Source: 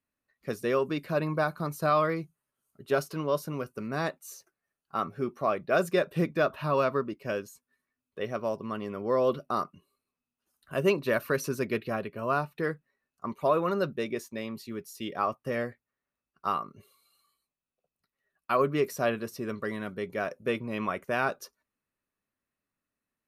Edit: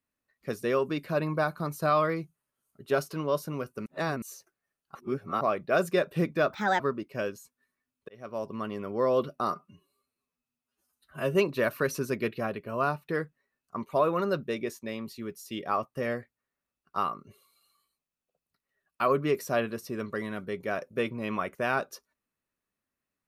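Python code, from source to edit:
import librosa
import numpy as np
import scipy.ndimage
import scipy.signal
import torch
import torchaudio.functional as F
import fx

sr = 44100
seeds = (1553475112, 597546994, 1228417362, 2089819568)

y = fx.edit(x, sr, fx.reverse_span(start_s=3.86, length_s=0.36),
    fx.reverse_span(start_s=4.95, length_s=0.46),
    fx.speed_span(start_s=6.53, length_s=0.37, speed=1.39),
    fx.fade_in_span(start_s=8.19, length_s=0.44),
    fx.stretch_span(start_s=9.62, length_s=1.22, factor=1.5), tone=tone)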